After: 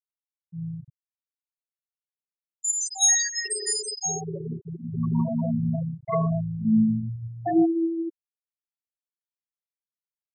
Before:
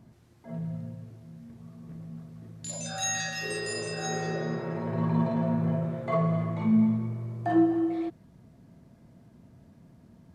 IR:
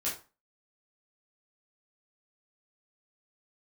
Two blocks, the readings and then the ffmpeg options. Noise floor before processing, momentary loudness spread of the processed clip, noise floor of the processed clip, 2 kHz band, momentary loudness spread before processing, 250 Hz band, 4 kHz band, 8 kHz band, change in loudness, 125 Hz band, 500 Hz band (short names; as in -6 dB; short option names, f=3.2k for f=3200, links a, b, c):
-58 dBFS, 15 LU, under -85 dBFS, -1.0 dB, 21 LU, +2.0 dB, +6.5 dB, +12.5 dB, +4.0 dB, +1.0 dB, 0.0 dB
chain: -af "aemphasis=mode=production:type=75fm,afftfilt=real='re*gte(hypot(re,im),0.141)':imag='im*gte(hypot(re,im),0.141)':win_size=1024:overlap=0.75,volume=3dB"